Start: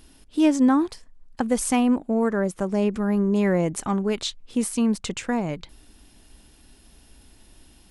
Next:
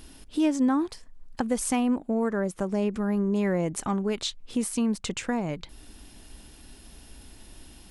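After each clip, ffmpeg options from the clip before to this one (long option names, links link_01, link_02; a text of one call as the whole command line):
ffmpeg -i in.wav -af "acompressor=threshold=-41dB:ratio=1.5,volume=4dB" out.wav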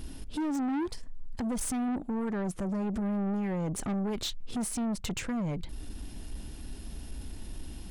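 ffmpeg -i in.wav -af "lowshelf=frequency=350:gain=10,alimiter=limit=-17dB:level=0:latency=1:release=78,asoftclip=type=tanh:threshold=-28.5dB" out.wav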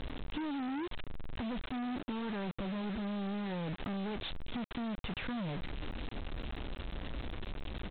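ffmpeg -i in.wav -af "acompressor=threshold=-35dB:ratio=16,aresample=8000,acrusher=bits=6:mix=0:aa=0.000001,aresample=44100" out.wav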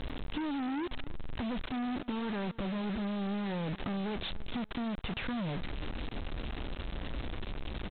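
ffmpeg -i in.wav -af "aecho=1:1:289|578:0.0891|0.0223,volume=2.5dB" out.wav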